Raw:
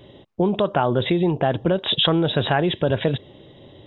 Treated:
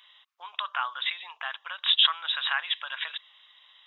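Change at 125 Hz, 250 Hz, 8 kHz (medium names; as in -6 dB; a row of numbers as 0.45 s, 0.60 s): under -40 dB, under -40 dB, no reading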